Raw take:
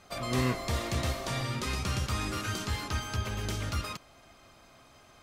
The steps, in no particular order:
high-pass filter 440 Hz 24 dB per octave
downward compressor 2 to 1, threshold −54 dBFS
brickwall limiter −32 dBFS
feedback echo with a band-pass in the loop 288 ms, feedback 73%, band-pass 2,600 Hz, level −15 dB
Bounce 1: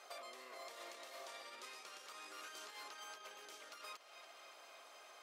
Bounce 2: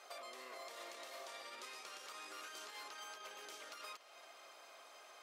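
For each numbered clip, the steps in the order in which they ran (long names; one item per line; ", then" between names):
brickwall limiter, then feedback echo with a band-pass in the loop, then downward compressor, then high-pass filter
brickwall limiter, then high-pass filter, then downward compressor, then feedback echo with a band-pass in the loop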